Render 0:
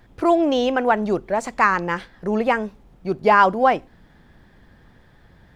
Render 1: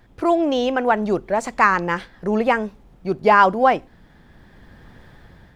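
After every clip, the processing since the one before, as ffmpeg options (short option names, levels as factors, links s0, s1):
-af "dynaudnorm=f=390:g=5:m=3.76,volume=0.891"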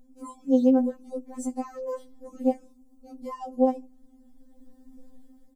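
-af "alimiter=limit=0.335:level=0:latency=1:release=343,firequalizer=gain_entry='entry(270,0);entry(1500,-30);entry(7400,-1)':delay=0.05:min_phase=1,afftfilt=real='re*3.46*eq(mod(b,12),0)':imag='im*3.46*eq(mod(b,12),0)':win_size=2048:overlap=0.75"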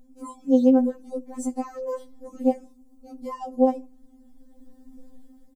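-filter_complex "[0:a]asplit=2[s0][s1];[s1]adelay=76,lowpass=f=1900:p=1,volume=0.0668,asplit=2[s2][s3];[s3]adelay=76,lowpass=f=1900:p=1,volume=0.38[s4];[s0][s2][s4]amix=inputs=3:normalize=0,volume=1.33"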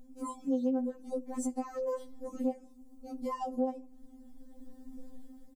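-af "acompressor=threshold=0.0251:ratio=3"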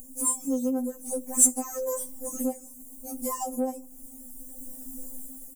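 -filter_complex "[0:a]aexciter=amount=14.1:drive=8.6:freq=6500,asplit=2[s0][s1];[s1]asoftclip=type=tanh:threshold=0.0562,volume=0.501[s2];[s0][s2]amix=inputs=2:normalize=0"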